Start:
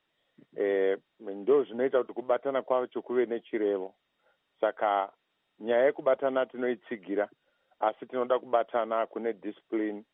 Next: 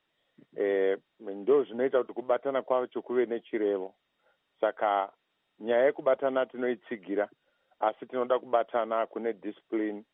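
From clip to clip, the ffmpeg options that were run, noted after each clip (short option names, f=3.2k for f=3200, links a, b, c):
-af anull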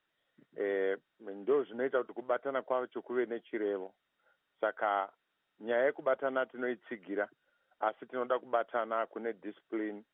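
-af "equalizer=f=1.5k:t=o:w=0.55:g=7.5,volume=-6dB"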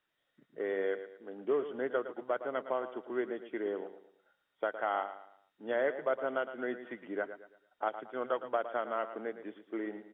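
-af "aecho=1:1:112|224|336|448:0.266|0.0958|0.0345|0.0124,volume=-1.5dB"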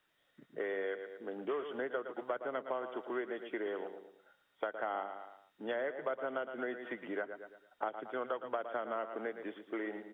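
-filter_complex "[0:a]acrossover=split=450|930[a][b][c];[a]acompressor=threshold=-50dB:ratio=4[d];[b]acompressor=threshold=-47dB:ratio=4[e];[c]acompressor=threshold=-48dB:ratio=4[f];[d][e][f]amix=inputs=3:normalize=0,volume=5.5dB"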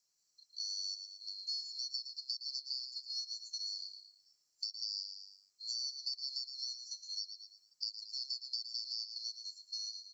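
-af "afftfilt=real='real(if(lt(b,736),b+184*(1-2*mod(floor(b/184),2)),b),0)':imag='imag(if(lt(b,736),b+184*(1-2*mod(floor(b/184),2)),b),0)':win_size=2048:overlap=0.75,volume=-3.5dB"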